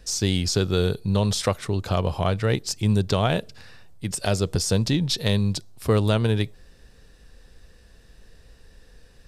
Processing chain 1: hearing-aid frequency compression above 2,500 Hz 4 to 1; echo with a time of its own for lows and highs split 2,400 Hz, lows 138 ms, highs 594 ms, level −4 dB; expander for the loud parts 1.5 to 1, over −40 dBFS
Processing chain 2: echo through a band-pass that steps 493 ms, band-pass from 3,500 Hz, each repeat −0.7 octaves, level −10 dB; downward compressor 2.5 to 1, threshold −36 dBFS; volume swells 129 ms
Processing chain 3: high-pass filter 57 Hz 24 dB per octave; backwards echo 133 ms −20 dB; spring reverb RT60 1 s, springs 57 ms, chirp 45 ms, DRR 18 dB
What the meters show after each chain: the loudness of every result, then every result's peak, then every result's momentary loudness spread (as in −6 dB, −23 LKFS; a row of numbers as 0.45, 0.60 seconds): −23.0, −38.0, −23.5 LKFS; −8.0, −20.0, −5.5 dBFS; 11, 13, 7 LU